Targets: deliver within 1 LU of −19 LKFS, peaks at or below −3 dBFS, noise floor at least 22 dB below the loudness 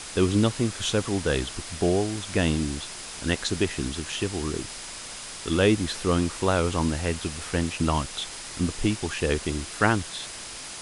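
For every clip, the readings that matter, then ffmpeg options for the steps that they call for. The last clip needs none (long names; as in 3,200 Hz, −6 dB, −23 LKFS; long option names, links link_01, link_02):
interfering tone 5,000 Hz; level of the tone −49 dBFS; background noise floor −39 dBFS; target noise floor −49 dBFS; integrated loudness −26.5 LKFS; sample peak −6.0 dBFS; target loudness −19.0 LKFS
→ -af "bandreject=frequency=5000:width=30"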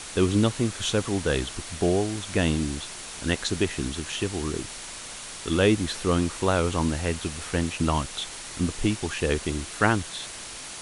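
interfering tone none found; background noise floor −39 dBFS; target noise floor −49 dBFS
→ -af "afftdn=noise_reduction=10:noise_floor=-39"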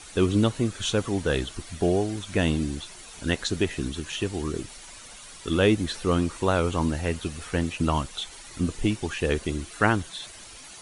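background noise floor −45 dBFS; target noise floor −49 dBFS
→ -af "afftdn=noise_reduction=6:noise_floor=-45"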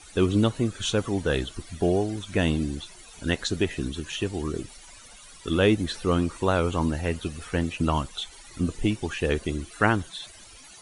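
background noise floor −48 dBFS; target noise floor −49 dBFS
→ -af "afftdn=noise_reduction=6:noise_floor=-48"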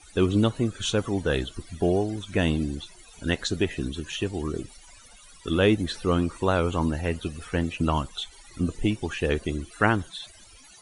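background noise floor −51 dBFS; integrated loudness −27.0 LKFS; sample peak −6.0 dBFS; target loudness −19.0 LKFS
→ -af "volume=8dB,alimiter=limit=-3dB:level=0:latency=1"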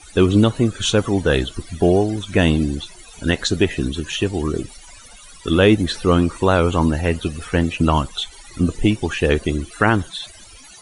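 integrated loudness −19.0 LKFS; sample peak −3.0 dBFS; background noise floor −43 dBFS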